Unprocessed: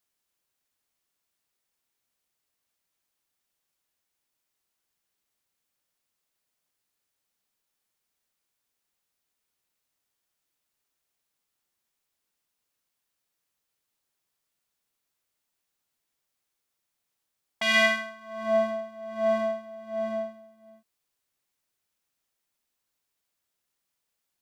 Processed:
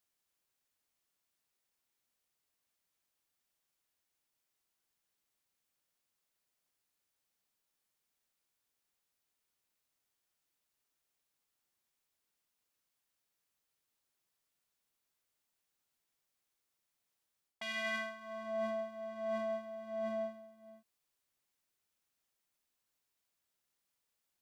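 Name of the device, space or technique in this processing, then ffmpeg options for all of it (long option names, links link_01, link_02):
compression on the reversed sound: -af "areverse,acompressor=threshold=-31dB:ratio=10,areverse,volume=-3.5dB"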